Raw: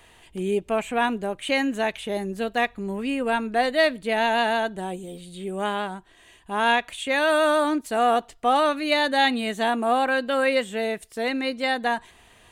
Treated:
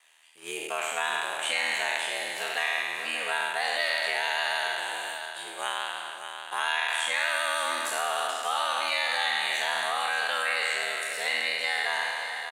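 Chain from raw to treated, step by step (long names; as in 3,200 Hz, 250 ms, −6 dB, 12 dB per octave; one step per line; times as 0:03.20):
peak hold with a decay on every bin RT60 1.79 s
high-pass filter 1,100 Hz 12 dB per octave
noise gate −40 dBFS, range −19 dB
parametric band 8,600 Hz +3.5 dB 1.8 octaves
in parallel at −2 dB: compressor whose output falls as the input rises −26 dBFS
on the sum: ring modulation 40 Hz
on a send: single-tap delay 582 ms −11 dB
on the sum: multiband upward and downward compressor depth 40%
level −6 dB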